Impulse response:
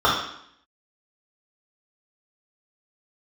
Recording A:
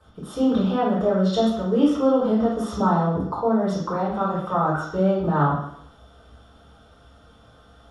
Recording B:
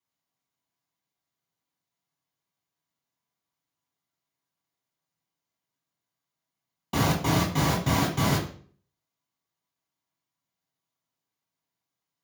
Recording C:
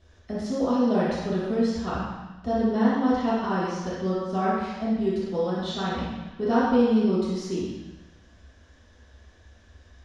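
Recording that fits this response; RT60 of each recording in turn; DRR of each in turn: A; 0.70 s, 0.50 s, 1.1 s; -8.0 dB, -2.0 dB, -11.0 dB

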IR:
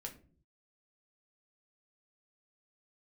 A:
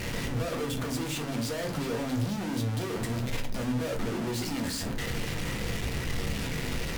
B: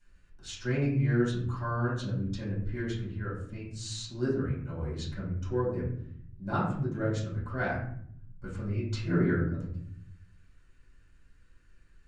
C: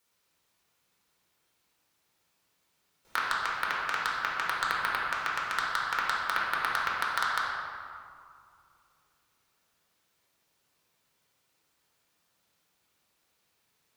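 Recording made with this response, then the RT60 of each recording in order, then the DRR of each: A; no single decay rate, 0.65 s, 2.3 s; 1.5 dB, -9.5 dB, -5.0 dB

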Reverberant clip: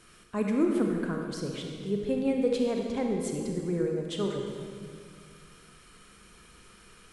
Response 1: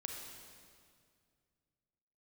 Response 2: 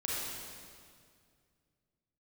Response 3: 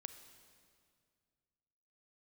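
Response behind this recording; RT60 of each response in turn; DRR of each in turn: 1; 2.1 s, 2.1 s, 2.1 s; 1.0 dB, -6.0 dB, 9.0 dB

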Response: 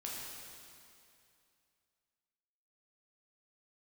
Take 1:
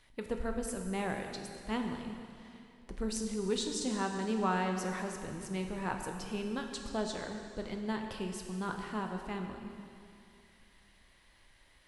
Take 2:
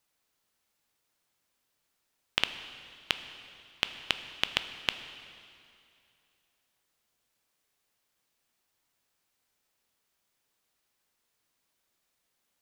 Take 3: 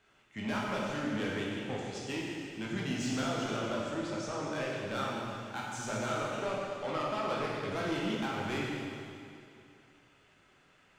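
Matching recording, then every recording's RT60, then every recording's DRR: 3; 2.5 s, 2.5 s, 2.5 s; 3.5 dB, 9.0 dB, -4.5 dB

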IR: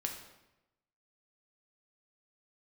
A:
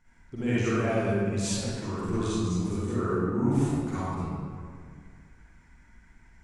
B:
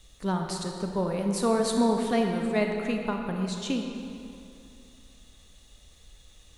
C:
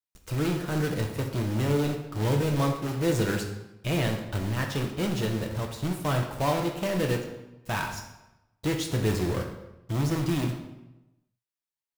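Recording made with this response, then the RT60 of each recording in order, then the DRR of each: C; 2.0 s, 2.7 s, 0.95 s; -10.5 dB, 2.5 dB, 1.5 dB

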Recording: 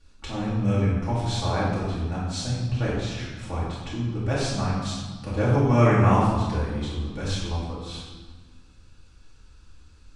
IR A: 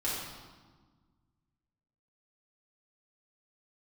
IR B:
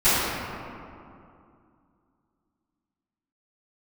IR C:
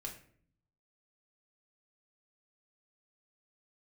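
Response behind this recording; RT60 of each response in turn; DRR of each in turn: A; 1.4 s, 2.6 s, 0.55 s; -8.5 dB, -18.5 dB, -0.5 dB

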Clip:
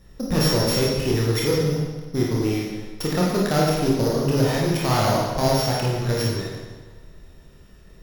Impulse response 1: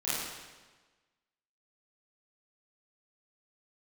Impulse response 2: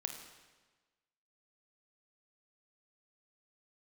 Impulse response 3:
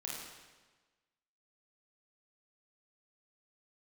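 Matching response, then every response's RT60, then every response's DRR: 3; 1.3 s, 1.3 s, 1.3 s; -12.5 dB, 4.0 dB, -4.5 dB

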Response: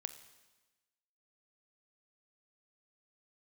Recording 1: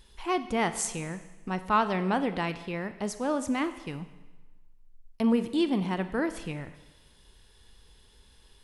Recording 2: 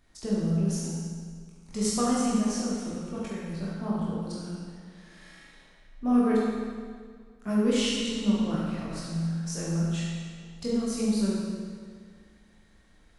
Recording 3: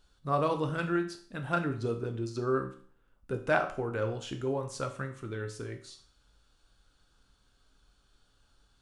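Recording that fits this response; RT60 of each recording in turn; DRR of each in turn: 1; 1.2 s, 1.9 s, 0.50 s; 10.5 dB, -6.5 dB, 4.5 dB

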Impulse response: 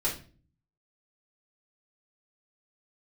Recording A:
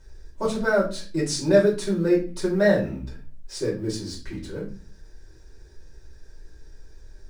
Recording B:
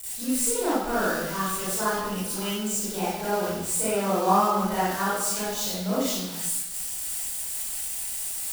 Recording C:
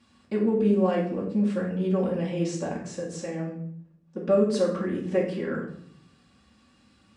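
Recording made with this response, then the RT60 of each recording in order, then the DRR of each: A; 0.40 s, 1.0 s, 0.65 s; -6.0 dB, -11.5 dB, -8.5 dB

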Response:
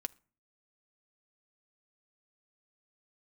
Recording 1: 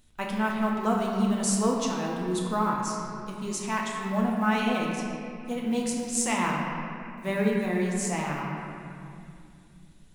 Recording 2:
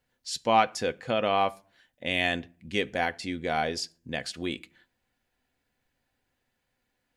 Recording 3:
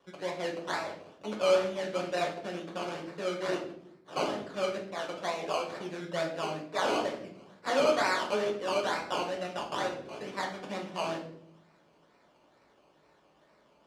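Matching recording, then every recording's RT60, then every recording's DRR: 2; 2.5 s, no single decay rate, 0.70 s; -2.5 dB, 10.5 dB, -1.5 dB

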